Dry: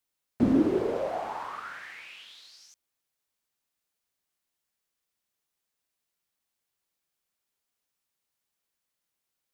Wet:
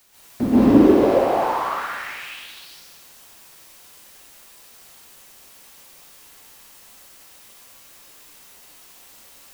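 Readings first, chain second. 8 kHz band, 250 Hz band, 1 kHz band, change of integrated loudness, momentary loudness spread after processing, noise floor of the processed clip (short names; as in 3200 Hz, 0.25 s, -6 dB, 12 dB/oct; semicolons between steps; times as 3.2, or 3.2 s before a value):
n/a, +11.0 dB, +13.5 dB, +10.5 dB, 20 LU, -48 dBFS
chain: LPF 5800 Hz 24 dB/oct; sample leveller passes 1; in parallel at -3.5 dB: requantised 8-bit, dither triangular; on the sum: plate-style reverb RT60 1.2 s, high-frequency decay 1×, pre-delay 0.115 s, DRR -10 dB; gain -6 dB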